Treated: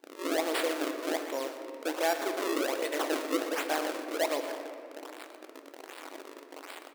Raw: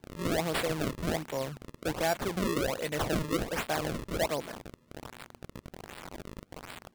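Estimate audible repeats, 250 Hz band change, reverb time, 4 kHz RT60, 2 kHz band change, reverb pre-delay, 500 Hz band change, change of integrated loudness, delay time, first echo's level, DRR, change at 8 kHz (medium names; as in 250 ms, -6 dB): 1, -0.5 dB, 2.9 s, 1.5 s, +1.0 dB, 6 ms, +1.5 dB, 0.0 dB, 121 ms, -13.0 dB, 5.5 dB, +0.5 dB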